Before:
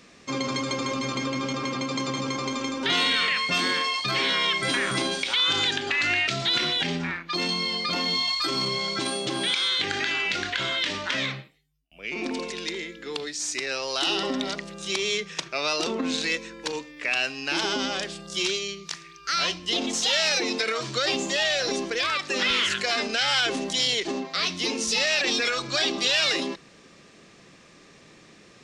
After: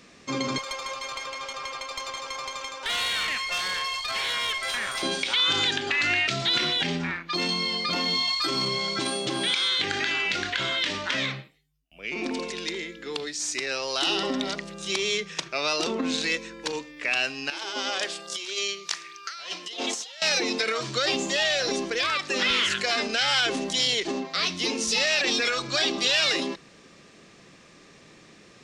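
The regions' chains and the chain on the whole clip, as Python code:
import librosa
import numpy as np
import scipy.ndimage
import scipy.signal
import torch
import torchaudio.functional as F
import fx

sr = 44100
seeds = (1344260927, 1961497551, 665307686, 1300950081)

y = fx.chain(x, sr, fx.highpass(hz=580.0, slope=24),
    fx.tube_stage(drive_db=22.0, bias=0.5), at=(0.58, 5.03))
y = fx.chain(y, sr, fx.highpass(hz=460.0, slope=12),
    fx.over_compress(threshold_db=-31.0, ratio=-0.5), at=(17.5, 20.22))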